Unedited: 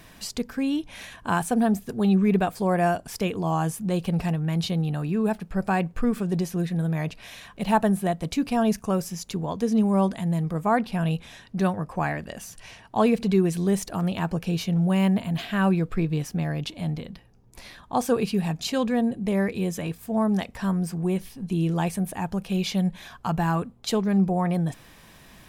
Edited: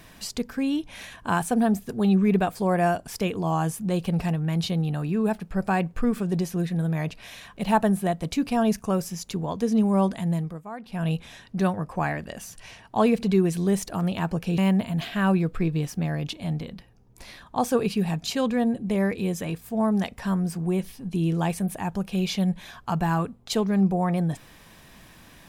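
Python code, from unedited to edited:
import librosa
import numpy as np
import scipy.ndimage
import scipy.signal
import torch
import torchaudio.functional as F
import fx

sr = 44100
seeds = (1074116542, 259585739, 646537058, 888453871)

y = fx.edit(x, sr, fx.fade_down_up(start_s=10.33, length_s=0.77, db=-15.5, fade_s=0.29),
    fx.cut(start_s=14.58, length_s=0.37), tone=tone)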